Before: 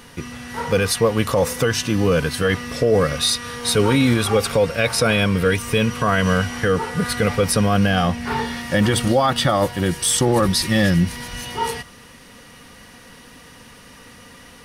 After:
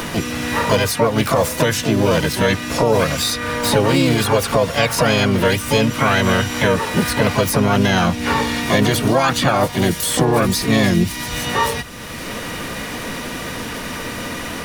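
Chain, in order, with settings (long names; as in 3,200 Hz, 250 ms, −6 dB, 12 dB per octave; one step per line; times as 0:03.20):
pitch-shifted copies added +4 semitones −4 dB, +12 semitones −8 dB
multiband upward and downward compressor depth 70%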